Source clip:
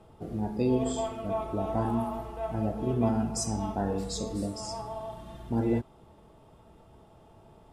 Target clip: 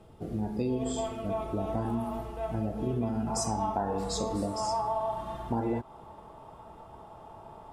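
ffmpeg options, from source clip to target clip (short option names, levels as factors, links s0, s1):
-af "asetnsamples=n=441:p=0,asendcmd='3.27 equalizer g 12',equalizer=f=950:t=o:w=1.3:g=-3,acompressor=threshold=0.0398:ratio=6,volume=1.19"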